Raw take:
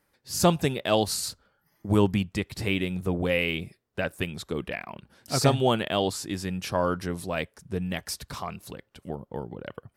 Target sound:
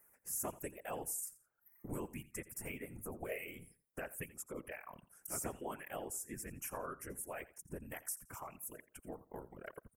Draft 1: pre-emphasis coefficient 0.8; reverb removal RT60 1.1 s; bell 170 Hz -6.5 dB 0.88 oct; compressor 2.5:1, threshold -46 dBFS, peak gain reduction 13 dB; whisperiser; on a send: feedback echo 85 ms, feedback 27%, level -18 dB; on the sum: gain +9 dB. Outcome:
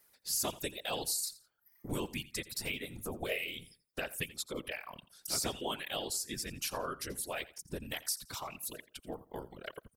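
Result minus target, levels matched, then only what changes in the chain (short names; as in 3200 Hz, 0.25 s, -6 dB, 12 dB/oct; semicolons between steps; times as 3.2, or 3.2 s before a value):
4000 Hz band +15.0 dB; compressor: peak gain reduction -4.5 dB
add after reverb removal: Butterworth band-stop 4000 Hz, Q 0.73; change: compressor 2.5:1, threshold -55.5 dBFS, peak gain reduction 17.5 dB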